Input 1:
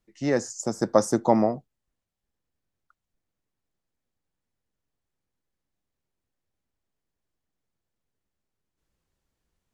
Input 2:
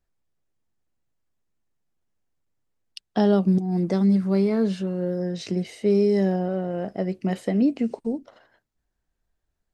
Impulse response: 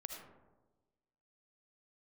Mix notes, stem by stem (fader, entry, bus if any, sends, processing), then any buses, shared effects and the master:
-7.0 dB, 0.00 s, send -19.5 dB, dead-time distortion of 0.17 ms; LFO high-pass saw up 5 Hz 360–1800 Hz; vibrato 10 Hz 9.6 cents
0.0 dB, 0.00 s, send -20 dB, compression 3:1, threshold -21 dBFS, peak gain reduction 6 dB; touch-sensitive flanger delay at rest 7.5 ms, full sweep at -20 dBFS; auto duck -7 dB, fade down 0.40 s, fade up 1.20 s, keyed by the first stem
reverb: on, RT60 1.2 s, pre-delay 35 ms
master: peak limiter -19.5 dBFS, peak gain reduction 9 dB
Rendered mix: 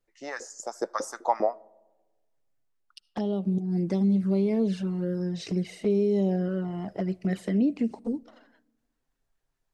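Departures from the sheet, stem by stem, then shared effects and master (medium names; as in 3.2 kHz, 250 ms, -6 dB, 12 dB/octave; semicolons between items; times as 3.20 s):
stem 1: missing dead-time distortion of 0.17 ms; master: missing peak limiter -19.5 dBFS, peak gain reduction 9 dB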